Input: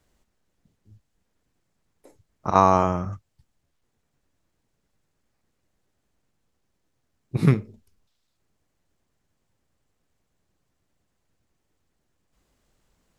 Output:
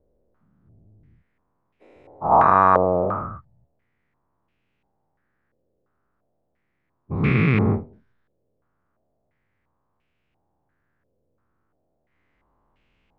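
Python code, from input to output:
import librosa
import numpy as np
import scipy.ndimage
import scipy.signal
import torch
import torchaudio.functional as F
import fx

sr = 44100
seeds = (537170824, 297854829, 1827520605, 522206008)

y = fx.spec_dilate(x, sr, span_ms=480)
y = fx.filter_held_lowpass(y, sr, hz=2.9, low_hz=520.0, high_hz=2600.0)
y = F.gain(torch.from_numpy(y), -6.0).numpy()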